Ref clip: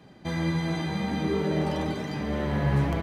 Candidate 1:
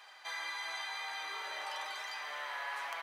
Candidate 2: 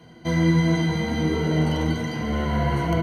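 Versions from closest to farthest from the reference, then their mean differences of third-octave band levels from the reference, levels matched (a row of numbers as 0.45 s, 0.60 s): 2, 1; 3.0 dB, 17.0 dB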